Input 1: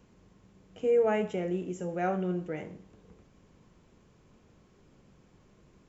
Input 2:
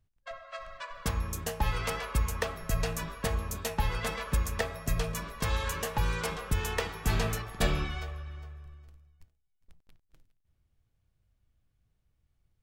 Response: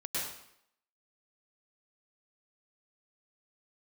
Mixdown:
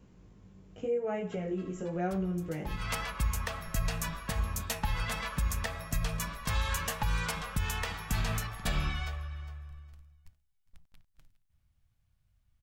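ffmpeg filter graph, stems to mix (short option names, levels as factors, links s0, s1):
-filter_complex "[0:a]lowshelf=f=200:g=8.5,acompressor=threshold=0.0398:ratio=6,flanger=delay=15.5:depth=5.2:speed=0.89,volume=1.12,asplit=2[s0][s1];[1:a]equalizer=f=400:t=o:w=0.92:g=-12,adelay=1050,volume=1.19[s2];[s1]apad=whole_len=603019[s3];[s2][s3]sidechaincompress=threshold=0.00316:ratio=10:attack=20:release=123[s4];[s0][s4]amix=inputs=2:normalize=0,alimiter=limit=0.0944:level=0:latency=1:release=111"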